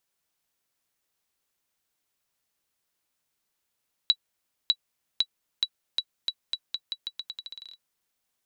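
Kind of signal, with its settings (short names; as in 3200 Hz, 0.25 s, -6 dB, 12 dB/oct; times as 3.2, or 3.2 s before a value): bouncing ball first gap 0.60 s, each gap 0.84, 3920 Hz, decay 58 ms -8.5 dBFS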